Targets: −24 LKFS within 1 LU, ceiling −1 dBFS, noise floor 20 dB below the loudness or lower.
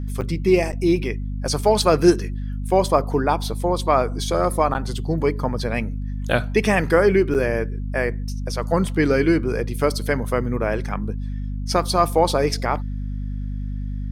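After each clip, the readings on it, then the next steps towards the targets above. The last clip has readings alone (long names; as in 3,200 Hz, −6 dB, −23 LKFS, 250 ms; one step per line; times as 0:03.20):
number of dropouts 4; longest dropout 8.0 ms; mains hum 50 Hz; hum harmonics up to 250 Hz; level of the hum −24 dBFS; integrated loudness −21.5 LKFS; sample peak −3.0 dBFS; target loudness −24.0 LKFS
→ repair the gap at 0:00.21/0:00.72/0:04.74/0:07.34, 8 ms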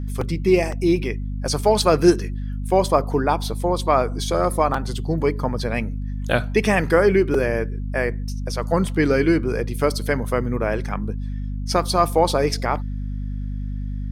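number of dropouts 0; mains hum 50 Hz; hum harmonics up to 250 Hz; level of the hum −24 dBFS
→ mains-hum notches 50/100/150/200/250 Hz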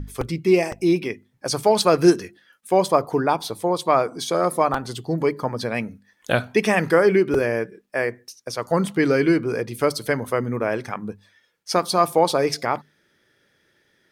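mains hum none found; integrated loudness −21.5 LKFS; sample peak −3.5 dBFS; target loudness −24.0 LKFS
→ level −2.5 dB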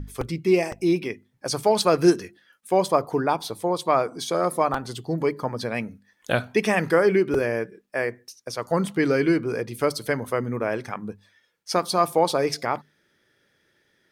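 integrated loudness −24.0 LKFS; sample peak −6.0 dBFS; background noise floor −68 dBFS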